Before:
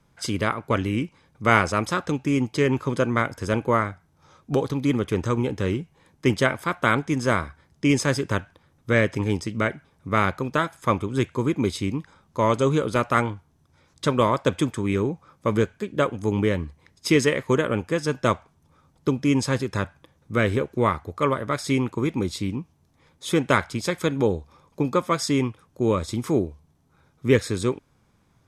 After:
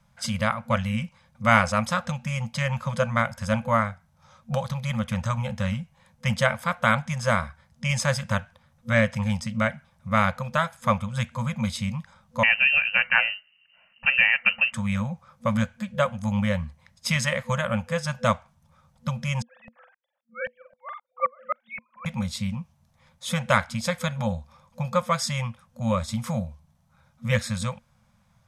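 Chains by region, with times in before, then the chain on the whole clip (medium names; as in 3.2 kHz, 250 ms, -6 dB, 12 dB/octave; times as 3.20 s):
12.43–14.73 s: frequency inversion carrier 2.9 kHz + peaking EQ 180 Hz +7.5 dB 1 oct
19.42–22.06 s: formants replaced by sine waves + doubling 44 ms -11 dB + sawtooth tremolo in dB swelling 3.8 Hz, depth 40 dB
whole clip: FFT band-reject 230–500 Hz; peaking EQ 250 Hz +8 dB 0.26 oct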